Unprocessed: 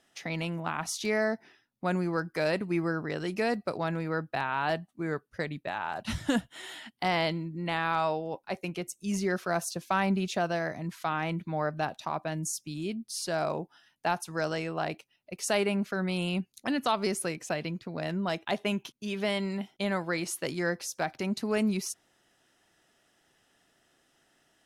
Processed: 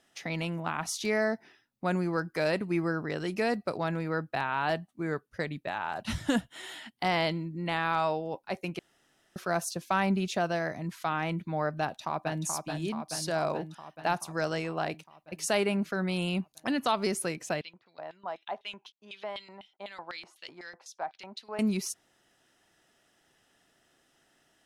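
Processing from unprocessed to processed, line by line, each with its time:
0:08.79–0:09.36: fill with room tone
0:11.83–0:12.45: delay throw 430 ms, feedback 70%, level −5 dB
0:17.61–0:21.59: auto-filter band-pass square 4 Hz 880–3,500 Hz

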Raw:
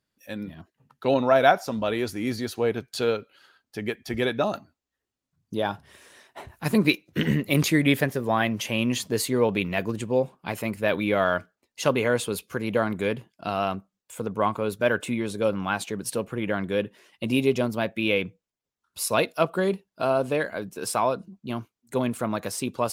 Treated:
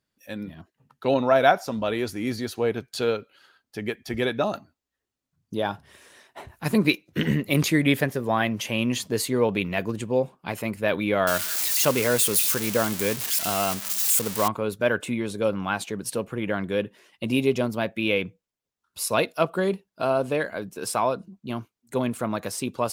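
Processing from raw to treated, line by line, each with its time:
0:11.27–0:14.48: spike at every zero crossing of −15.5 dBFS

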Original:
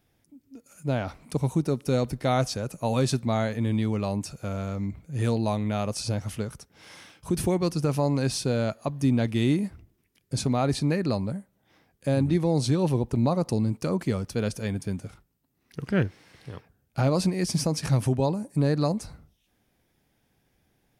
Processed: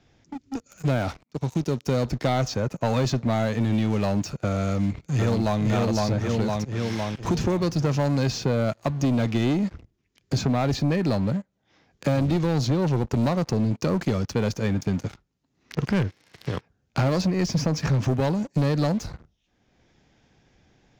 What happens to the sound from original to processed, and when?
0:01.23–0:02.49: fade in equal-power
0:04.68–0:05.62: delay throw 510 ms, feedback 50%, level −0.5 dB
whole clip: Butterworth low-pass 7,200 Hz 96 dB per octave; leveller curve on the samples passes 3; multiband upward and downward compressor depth 70%; level −6.5 dB

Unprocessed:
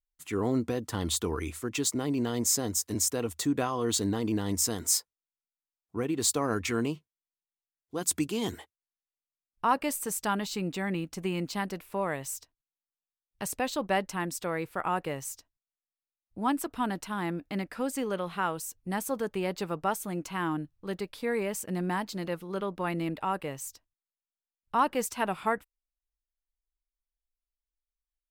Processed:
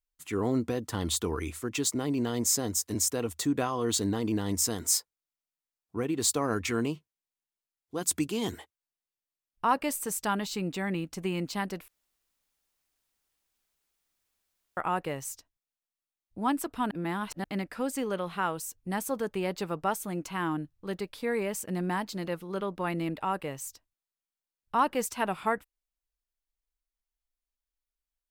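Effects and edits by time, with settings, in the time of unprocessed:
0:11.88–0:14.77: fill with room tone
0:16.91–0:17.44: reverse

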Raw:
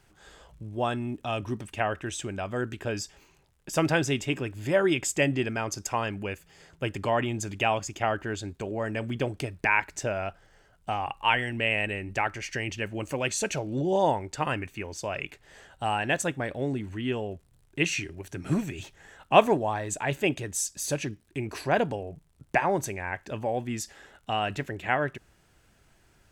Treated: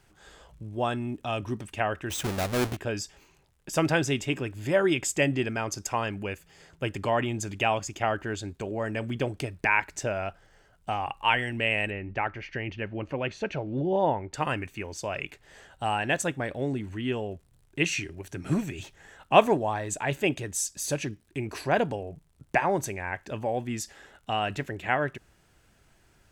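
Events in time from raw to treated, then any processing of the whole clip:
0:02.10–0:02.77: each half-wave held at its own peak
0:11.90–0:14.34: high-frequency loss of the air 300 metres

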